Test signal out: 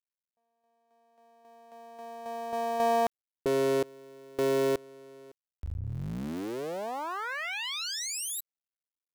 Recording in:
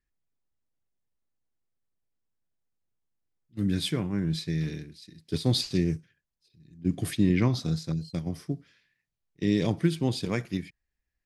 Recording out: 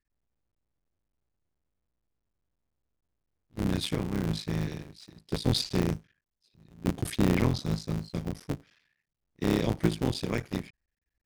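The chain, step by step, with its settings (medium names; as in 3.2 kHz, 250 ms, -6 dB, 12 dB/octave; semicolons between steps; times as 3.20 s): cycle switcher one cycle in 3, muted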